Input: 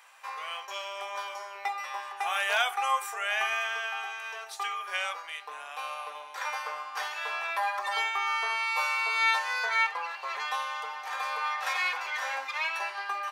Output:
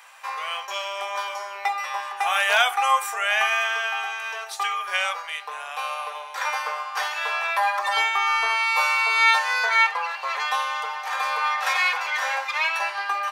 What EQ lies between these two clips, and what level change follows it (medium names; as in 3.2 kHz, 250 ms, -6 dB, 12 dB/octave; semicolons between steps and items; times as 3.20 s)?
high-pass 420 Hz 24 dB/octave; +7.5 dB